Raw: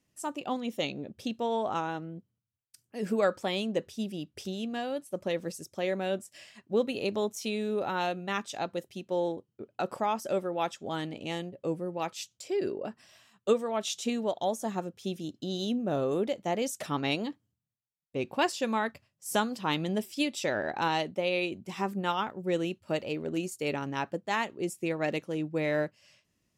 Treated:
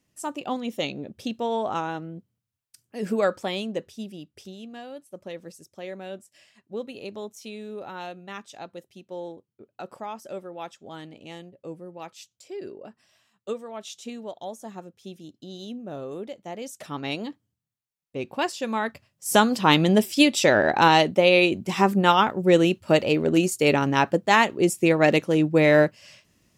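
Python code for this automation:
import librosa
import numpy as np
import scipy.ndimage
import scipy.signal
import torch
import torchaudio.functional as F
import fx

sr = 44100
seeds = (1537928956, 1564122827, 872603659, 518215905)

y = fx.gain(x, sr, db=fx.line((3.33, 3.5), (4.58, -6.0), (16.53, -6.0), (17.25, 1.0), (18.63, 1.0), (19.56, 12.0)))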